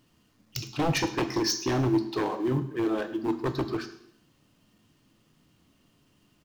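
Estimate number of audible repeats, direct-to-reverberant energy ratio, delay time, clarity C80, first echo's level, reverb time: 1, 8.5 dB, 107 ms, 14.0 dB, −18.5 dB, 0.70 s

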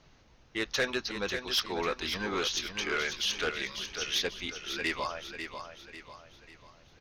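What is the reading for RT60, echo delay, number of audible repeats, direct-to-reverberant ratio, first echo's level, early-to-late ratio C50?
no reverb audible, 544 ms, 4, no reverb audible, −8.0 dB, no reverb audible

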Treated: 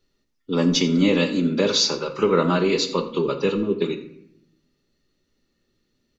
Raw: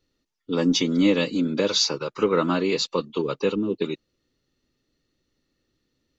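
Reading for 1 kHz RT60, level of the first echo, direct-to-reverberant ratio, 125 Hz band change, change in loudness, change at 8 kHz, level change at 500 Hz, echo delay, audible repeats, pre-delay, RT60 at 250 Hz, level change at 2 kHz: 0.65 s, −17.5 dB, 5.5 dB, +5.0 dB, +2.5 dB, can't be measured, +2.5 dB, 86 ms, 1, 5 ms, 1.1 s, +2.5 dB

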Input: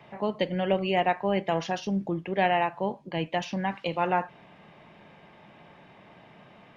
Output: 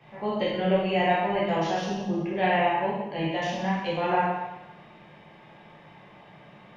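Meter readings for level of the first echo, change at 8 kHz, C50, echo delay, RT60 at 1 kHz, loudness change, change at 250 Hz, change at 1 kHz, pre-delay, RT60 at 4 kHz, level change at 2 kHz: no echo audible, can't be measured, −0.5 dB, no echo audible, 1.1 s, +1.5 dB, +2.0 dB, +2.0 dB, 6 ms, 1.0 s, +2.5 dB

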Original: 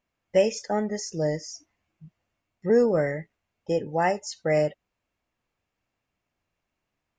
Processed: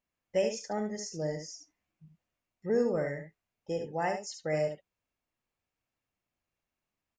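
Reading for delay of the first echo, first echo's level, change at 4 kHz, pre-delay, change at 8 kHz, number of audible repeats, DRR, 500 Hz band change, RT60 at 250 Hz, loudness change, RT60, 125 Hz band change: 71 ms, −7.0 dB, −6.0 dB, no reverb audible, −5.0 dB, 1, no reverb audible, −7.5 dB, no reverb audible, −7.5 dB, no reverb audible, −7.5 dB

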